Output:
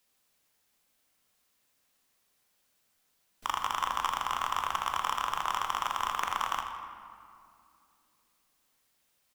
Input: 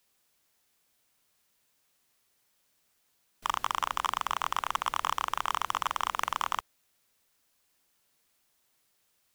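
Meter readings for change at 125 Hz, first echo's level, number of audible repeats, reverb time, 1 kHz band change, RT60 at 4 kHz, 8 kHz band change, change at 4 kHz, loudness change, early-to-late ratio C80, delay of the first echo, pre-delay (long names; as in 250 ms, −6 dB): −0.5 dB, −10.0 dB, 2, 2.4 s, 0.0 dB, 1.4 s, −1.0 dB, −0.5 dB, −0.5 dB, 5.5 dB, 81 ms, 4 ms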